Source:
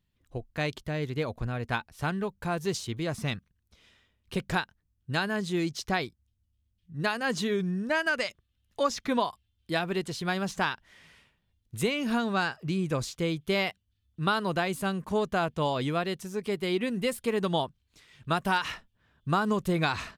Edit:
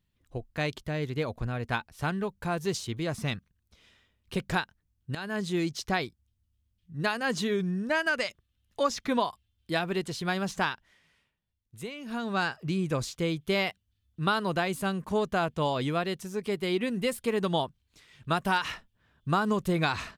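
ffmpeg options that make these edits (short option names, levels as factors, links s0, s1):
-filter_complex "[0:a]asplit=4[s0][s1][s2][s3];[s0]atrim=end=5.15,asetpts=PTS-STARTPTS,afade=t=out:st=5.146:d=0.004:c=hsin:silence=0.177828[s4];[s1]atrim=start=5.15:end=11.01,asetpts=PTS-STARTPTS,afade=t=in:d=0.26:silence=0.177828,afade=t=out:st=5.49:d=0.37:silence=0.281838[s5];[s2]atrim=start=11.01:end=12.06,asetpts=PTS-STARTPTS,volume=0.282[s6];[s3]atrim=start=12.06,asetpts=PTS-STARTPTS,afade=t=in:d=0.37:silence=0.281838[s7];[s4][s5][s6][s7]concat=n=4:v=0:a=1"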